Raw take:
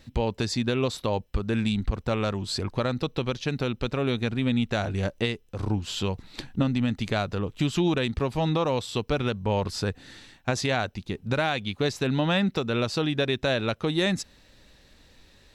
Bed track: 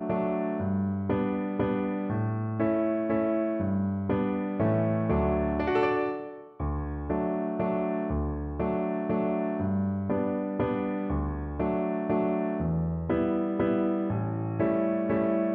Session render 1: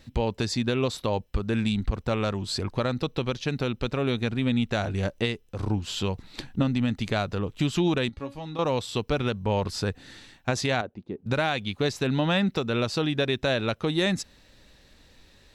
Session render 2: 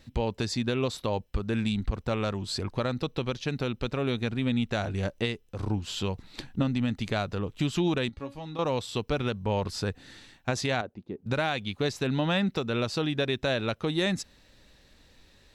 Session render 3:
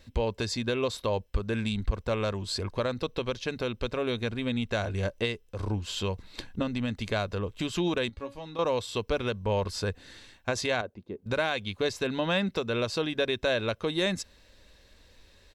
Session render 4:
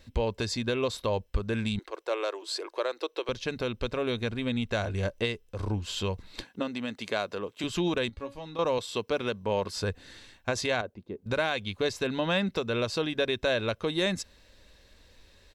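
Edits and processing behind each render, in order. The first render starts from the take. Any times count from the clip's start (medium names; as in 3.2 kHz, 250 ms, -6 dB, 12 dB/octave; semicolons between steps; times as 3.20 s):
8.09–8.59 s: feedback comb 280 Hz, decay 0.25 s, mix 80%; 10.81–11.26 s: band-pass filter 360 Hz, Q 0.96
trim -2.5 dB
peaking EQ 140 Hz -14.5 dB 0.25 oct; comb 1.9 ms, depth 30%
1.79–3.29 s: elliptic high-pass 330 Hz; 6.43–7.64 s: high-pass 260 Hz; 8.78–9.77 s: high-pass 150 Hz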